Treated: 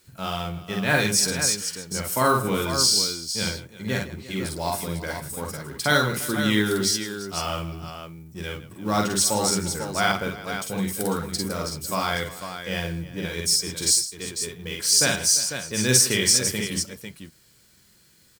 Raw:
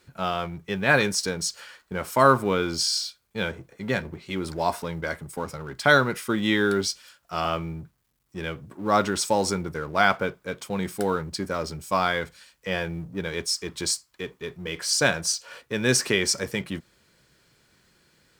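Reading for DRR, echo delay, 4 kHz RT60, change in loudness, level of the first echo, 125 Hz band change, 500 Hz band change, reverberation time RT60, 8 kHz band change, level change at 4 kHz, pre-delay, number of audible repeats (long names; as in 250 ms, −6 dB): no reverb audible, 47 ms, no reverb audible, +2.5 dB, −3.0 dB, +2.5 dB, −2.5 dB, no reverb audible, +8.5 dB, +5.0 dB, no reverb audible, 4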